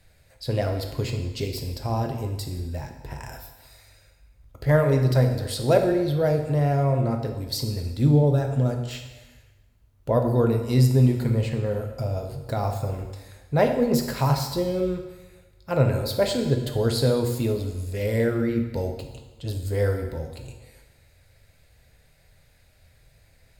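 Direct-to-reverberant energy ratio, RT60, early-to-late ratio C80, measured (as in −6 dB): 4.0 dB, 1.2 s, 8.5 dB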